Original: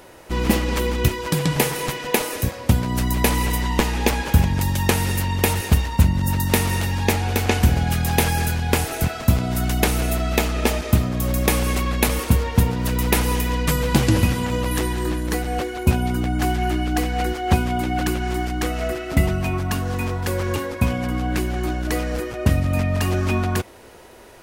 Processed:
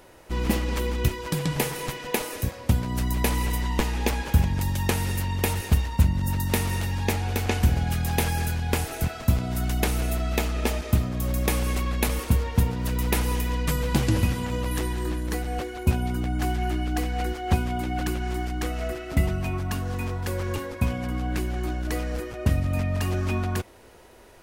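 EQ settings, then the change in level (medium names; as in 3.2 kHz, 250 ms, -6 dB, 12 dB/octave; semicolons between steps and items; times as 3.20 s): bass shelf 66 Hz +6.5 dB; -6.5 dB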